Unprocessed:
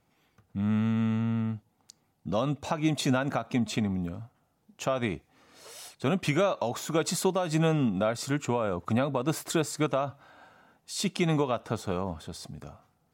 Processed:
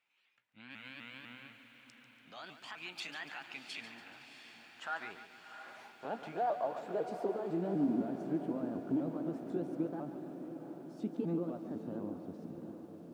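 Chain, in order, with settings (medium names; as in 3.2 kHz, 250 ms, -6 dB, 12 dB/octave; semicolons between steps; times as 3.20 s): sawtooth pitch modulation +4.5 st, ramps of 250 ms; peak limiter -22.5 dBFS, peak gain reduction 7.5 dB; band-pass sweep 2.5 kHz -> 290 Hz, 4.02–7.90 s; on a send: echo that smears into a reverb 705 ms, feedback 66%, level -10 dB; on the sum: bit-crushed delay 143 ms, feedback 55%, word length 11-bit, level -11 dB; trim +1 dB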